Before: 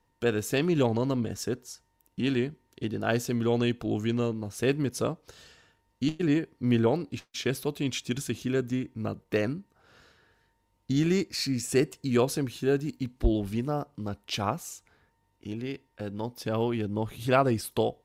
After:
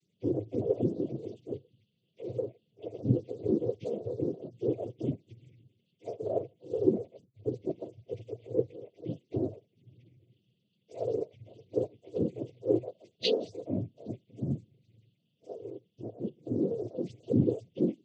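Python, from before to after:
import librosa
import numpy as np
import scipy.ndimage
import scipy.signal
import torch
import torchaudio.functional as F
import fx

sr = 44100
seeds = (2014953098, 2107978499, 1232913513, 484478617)

y = fx.octave_mirror(x, sr, pivot_hz=400.0)
y = fx.brickwall_bandstop(y, sr, low_hz=550.0, high_hz=2300.0)
y = fx.noise_vocoder(y, sr, seeds[0], bands=16)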